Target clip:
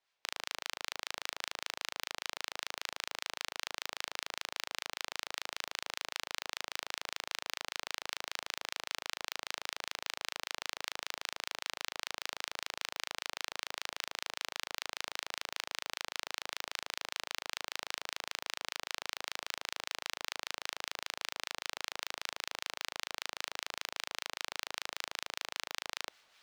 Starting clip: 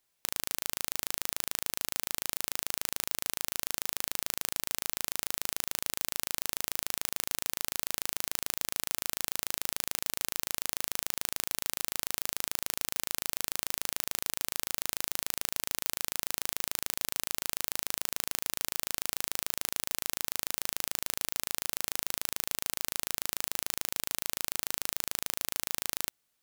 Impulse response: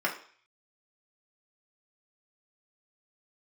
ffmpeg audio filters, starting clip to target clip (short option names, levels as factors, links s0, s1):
-filter_complex "[0:a]acrossover=split=490 5200:gain=0.178 1 0.0794[s0][s1][s2];[s0][s1][s2]amix=inputs=3:normalize=0,areverse,acompressor=mode=upward:threshold=0.00251:ratio=2.5,areverse,acrossover=split=1100[s3][s4];[s3]aeval=exprs='val(0)*(1-0.5/2+0.5/2*cos(2*PI*5.1*n/s))':c=same[s5];[s4]aeval=exprs='val(0)*(1-0.5/2-0.5/2*cos(2*PI*5.1*n/s))':c=same[s6];[s5][s6]amix=inputs=2:normalize=0,volume=1.41"